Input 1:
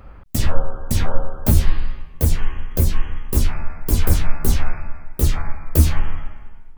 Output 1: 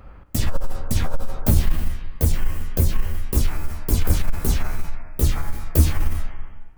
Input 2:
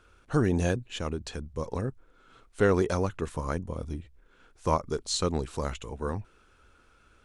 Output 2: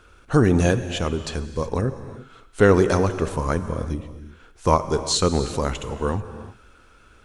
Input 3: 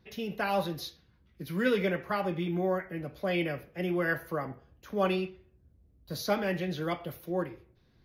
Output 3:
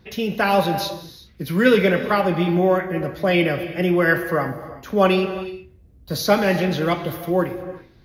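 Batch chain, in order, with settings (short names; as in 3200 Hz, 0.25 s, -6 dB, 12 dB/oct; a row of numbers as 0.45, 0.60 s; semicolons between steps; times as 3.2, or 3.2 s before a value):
non-linear reverb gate 0.4 s flat, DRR 10.5 dB; core saturation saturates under 29 Hz; normalise peaks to -3 dBFS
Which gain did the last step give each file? -1.5, +8.0, +11.5 dB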